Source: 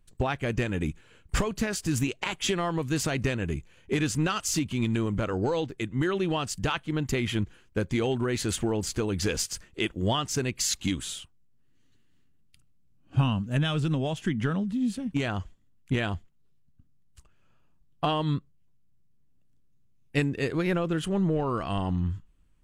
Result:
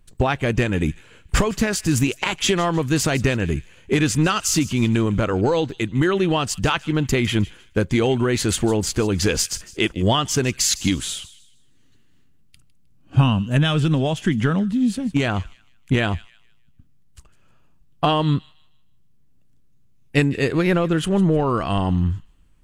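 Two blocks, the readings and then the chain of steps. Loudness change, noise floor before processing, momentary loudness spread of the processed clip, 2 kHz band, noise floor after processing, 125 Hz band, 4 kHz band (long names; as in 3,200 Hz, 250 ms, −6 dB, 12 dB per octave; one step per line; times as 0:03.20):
+8.0 dB, −61 dBFS, 6 LU, +8.0 dB, −53 dBFS, +8.0 dB, +8.0 dB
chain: delay with a high-pass on its return 155 ms, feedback 32%, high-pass 2,200 Hz, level −16.5 dB
level +8 dB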